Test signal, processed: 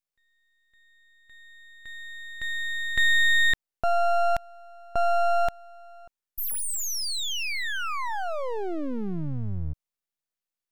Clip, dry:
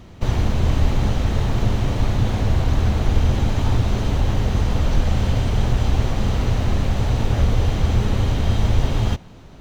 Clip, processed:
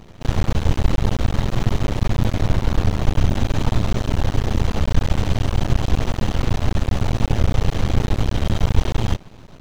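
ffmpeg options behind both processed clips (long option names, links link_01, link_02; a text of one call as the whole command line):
ffmpeg -i in.wav -af "aeval=exprs='max(val(0),0)':channel_layout=same,volume=3.5dB" out.wav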